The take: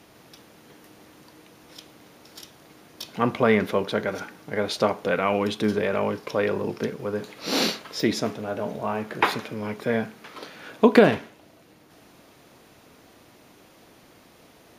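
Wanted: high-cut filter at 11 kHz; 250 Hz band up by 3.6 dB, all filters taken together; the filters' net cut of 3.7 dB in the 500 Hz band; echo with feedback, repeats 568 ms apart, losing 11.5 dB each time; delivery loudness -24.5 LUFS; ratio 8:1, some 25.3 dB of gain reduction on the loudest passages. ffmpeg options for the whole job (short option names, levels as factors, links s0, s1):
-af "lowpass=11000,equalizer=f=250:t=o:g=5.5,equalizer=f=500:t=o:g=-6,acompressor=threshold=0.0158:ratio=8,aecho=1:1:568|1136|1704:0.266|0.0718|0.0194,volume=7.08"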